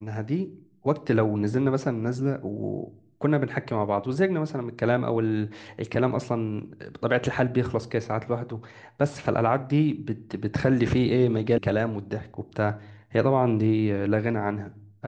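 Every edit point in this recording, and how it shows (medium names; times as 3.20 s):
11.58 s: sound stops dead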